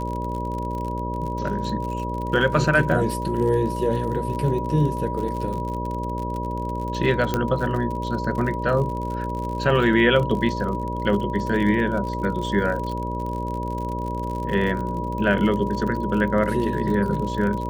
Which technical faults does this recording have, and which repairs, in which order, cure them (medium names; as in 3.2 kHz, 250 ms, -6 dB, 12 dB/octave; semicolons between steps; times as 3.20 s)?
buzz 60 Hz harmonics 10 -29 dBFS
crackle 52 per s -29 dBFS
whine 970 Hz -29 dBFS
7.34 s: pop -8 dBFS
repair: de-click; band-stop 970 Hz, Q 30; de-hum 60 Hz, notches 10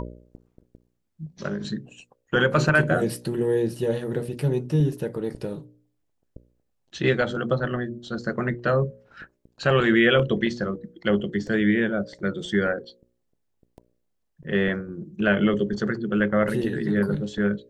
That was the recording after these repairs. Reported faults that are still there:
nothing left